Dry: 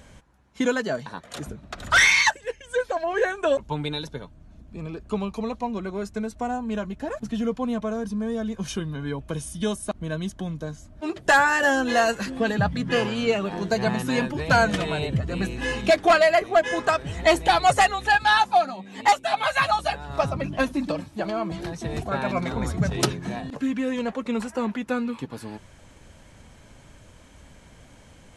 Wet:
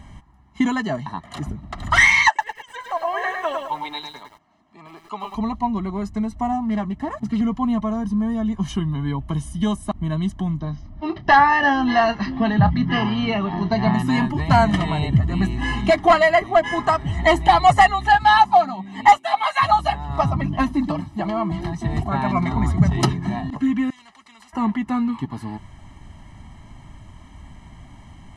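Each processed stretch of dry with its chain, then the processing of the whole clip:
2.28–5.35 s: band-pass 630–7400 Hz + bit-crushed delay 105 ms, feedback 35%, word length 8-bit, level -4 dB
6.52–7.41 s: high-pass 77 Hz + loudspeaker Doppler distortion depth 0.26 ms
10.60–13.94 s: steep low-pass 5.8 kHz 72 dB/octave + doubling 28 ms -12.5 dB
19.17–19.63 s: high-pass 310 Hz + bass shelf 490 Hz -7 dB
23.90–24.53 s: low-pass 4.9 kHz + differentiator + spectrum-flattening compressor 2:1
whole clip: treble shelf 3.2 kHz -12 dB; comb 1 ms, depth 93%; trim +3.5 dB

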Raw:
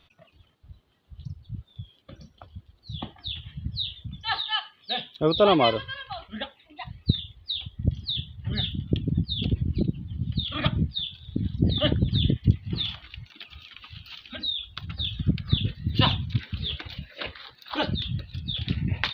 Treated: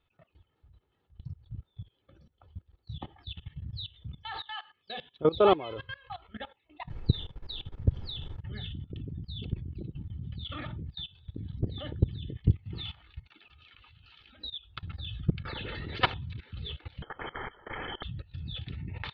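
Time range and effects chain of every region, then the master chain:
6.89–8.39 s: treble shelf 4.6 kHz +5.5 dB + added noise brown -40 dBFS
15.45–16.14 s: low-pass 2.1 kHz 6 dB/octave + bass shelf 380 Hz +3.5 dB + spectrum-flattening compressor 4:1
17.02–18.03 s: elliptic band-stop 120–1300 Hz, stop band 60 dB + frequency inversion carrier 3.2 kHz + spectrum-flattening compressor 4:1
whole clip: Bessel low-pass 2.2 kHz, order 2; comb 2.3 ms, depth 39%; level held to a coarse grid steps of 19 dB

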